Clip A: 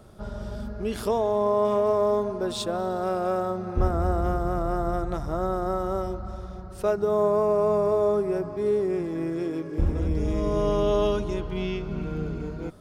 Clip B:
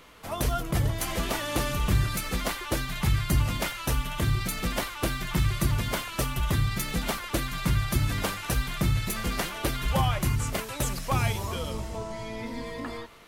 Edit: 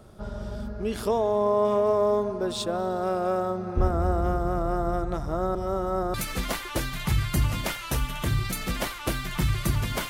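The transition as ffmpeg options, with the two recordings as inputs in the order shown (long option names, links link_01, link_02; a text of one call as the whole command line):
ffmpeg -i cue0.wav -i cue1.wav -filter_complex "[0:a]apad=whole_dur=10.09,atrim=end=10.09,asplit=2[link_01][link_02];[link_01]atrim=end=5.552[link_03];[link_02]atrim=start=5.548:end=6.142,asetpts=PTS-STARTPTS,areverse[link_04];[1:a]atrim=start=2.098:end=6.05[link_05];[link_03][link_04]acrossfade=duration=0.004:curve1=hsin:curve2=hsin[link_06];[link_06][link_05]acrossfade=duration=0.004:curve1=hsin:curve2=hsin" out.wav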